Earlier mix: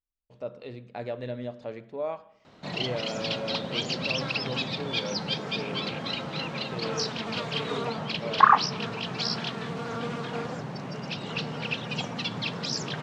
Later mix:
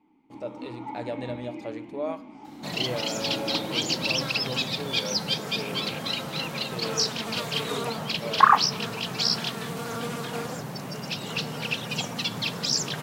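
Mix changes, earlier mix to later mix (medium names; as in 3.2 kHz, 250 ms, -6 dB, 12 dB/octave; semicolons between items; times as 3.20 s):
first sound: unmuted; master: remove distance through air 140 m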